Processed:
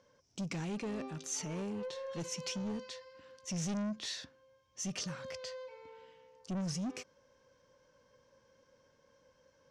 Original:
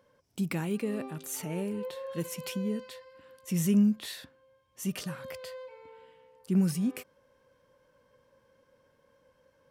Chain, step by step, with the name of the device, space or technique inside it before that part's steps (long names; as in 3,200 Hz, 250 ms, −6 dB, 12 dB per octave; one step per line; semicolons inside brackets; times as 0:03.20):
overdriven synthesiser ladder filter (soft clipping −32 dBFS, distortion −6 dB; transistor ladder low-pass 6,700 Hz, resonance 60%)
level +8.5 dB